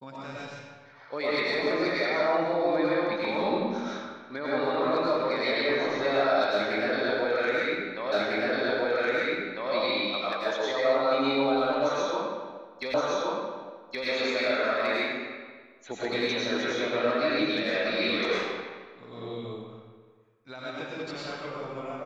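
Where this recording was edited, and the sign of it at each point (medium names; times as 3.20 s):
8.12 s: repeat of the last 1.6 s
12.94 s: repeat of the last 1.12 s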